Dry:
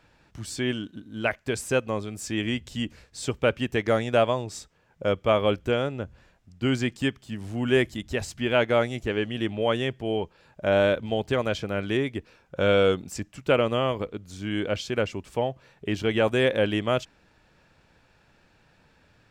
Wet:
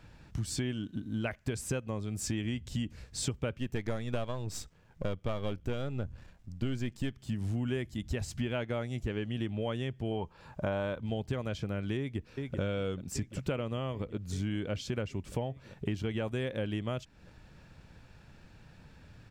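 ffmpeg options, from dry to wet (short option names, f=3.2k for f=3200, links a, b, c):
-filter_complex "[0:a]asettb=1/sr,asplit=3[a][b][c];[a]atrim=end=3.584[d];[b]atrim=start=3.58:end=7.18,asetpts=PTS-STARTPTS,afade=t=in:d=0.004:c=qsin,afade=t=out:st=3.596:d=0.004:c=qsin,aeval=exprs='if(lt(val(0),0),0.447*val(0),val(0))':c=same[e];[c]atrim=start=7.176[f];[d][e]acrossfade=d=0.004:c1=hsin:c2=qsin[g];[g][f]acrossfade=d=0.004:c1=qsin:c2=hsin,asettb=1/sr,asplit=3[h][i][j];[h]atrim=end=10.114[k];[i]atrim=start=10.11:end=11.01,asetpts=PTS-STARTPTS,afade=t=in:d=0.004:c=qsin,afade=t=out:st=0.896:d=0.004:c=qsin,equalizer=f=1k:t=o:w=0.91:g=9.5[l];[j]atrim=start=11.006[m];[k][l]acrossfade=d=0.004:c1=hsin:c2=qsin[n];[n][m]acrossfade=d=0.004:c1=qsin:c2=hsin,asplit=2[o][p];[p]afade=t=in:st=11.98:d=0.01,afade=t=out:st=12.61:d=0.01,aecho=0:1:390|780|1170|1560|1950|2340|2730|3120|3510|3900|4290|4680:0.211349|0.169079|0.135263|0.108211|0.0865685|0.0692548|0.0554038|0.0443231|0.0354585|0.0283668|0.0226934|0.0181547[q];[o][q]amix=inputs=2:normalize=0,bass=f=250:g=10,treble=f=4k:g=2,acompressor=threshold=-31dB:ratio=6"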